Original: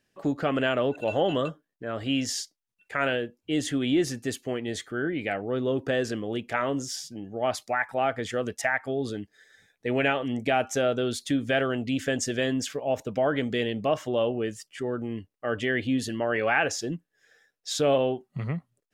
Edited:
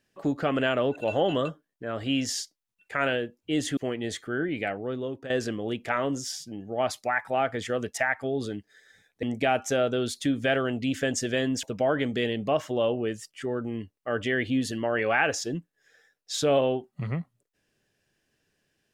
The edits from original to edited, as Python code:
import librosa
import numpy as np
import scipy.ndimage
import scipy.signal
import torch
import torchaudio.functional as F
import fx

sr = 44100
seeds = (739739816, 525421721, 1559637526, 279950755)

y = fx.edit(x, sr, fx.cut(start_s=3.77, length_s=0.64),
    fx.fade_out_to(start_s=5.25, length_s=0.69, floor_db=-13.0),
    fx.cut(start_s=9.87, length_s=0.41),
    fx.cut(start_s=12.68, length_s=0.32), tone=tone)